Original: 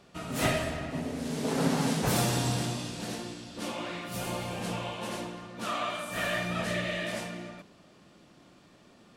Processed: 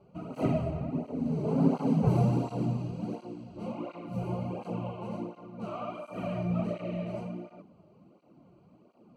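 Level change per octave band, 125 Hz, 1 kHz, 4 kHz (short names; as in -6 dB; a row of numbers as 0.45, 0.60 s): +3.5, -4.5, -19.5 dB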